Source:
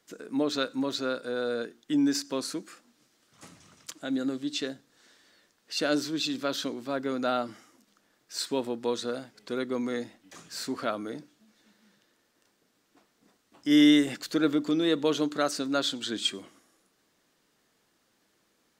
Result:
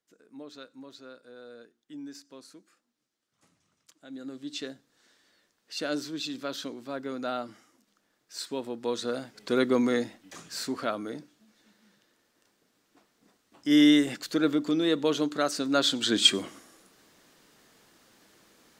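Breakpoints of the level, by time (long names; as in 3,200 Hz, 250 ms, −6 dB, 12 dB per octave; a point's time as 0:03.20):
0:03.92 −17 dB
0:04.54 −4.5 dB
0:08.61 −4.5 dB
0:09.64 +7.5 dB
0:10.81 0 dB
0:15.51 0 dB
0:16.36 +10 dB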